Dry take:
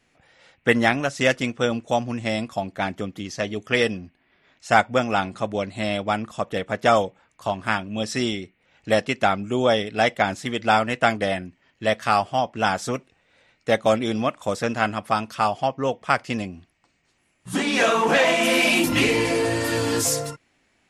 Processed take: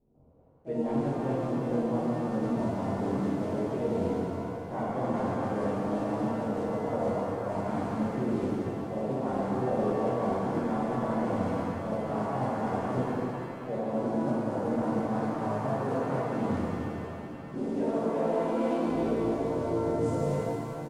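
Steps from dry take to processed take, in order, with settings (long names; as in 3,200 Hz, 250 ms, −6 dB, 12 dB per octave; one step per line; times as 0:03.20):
adaptive Wiener filter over 25 samples
drawn EQ curve 110 Hz 0 dB, 450 Hz −1 dB, 2,000 Hz −27 dB
automatic gain control gain up to 3.5 dB
in parallel at −11 dB: bit reduction 6 bits
on the sum: mains-hum notches 50/100/150/200/250/300/350 Hz
reversed playback
downward compressor 8 to 1, threshold −33 dBFS, peak gain reduction 21 dB
reversed playback
pitch-shifted copies added +5 semitones −8 dB
downsampling to 22,050 Hz
reverb with rising layers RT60 3.2 s, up +7 semitones, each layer −8 dB, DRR −8 dB
level −2.5 dB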